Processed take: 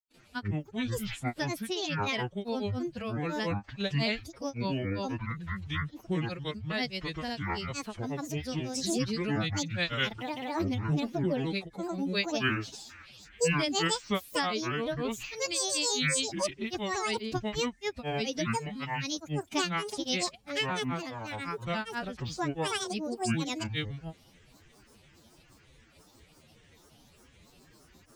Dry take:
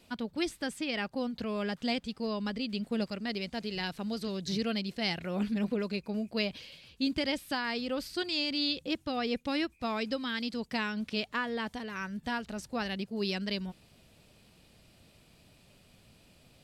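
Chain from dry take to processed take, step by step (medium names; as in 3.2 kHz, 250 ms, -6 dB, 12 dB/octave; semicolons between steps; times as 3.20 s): gliding tape speed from 74% -> 115%; granulator, grains 23 per s, pitch spread up and down by 12 st; harmonic-percussive split harmonic -6 dB; time stretch by phase-locked vocoder 1.6×; trim +6.5 dB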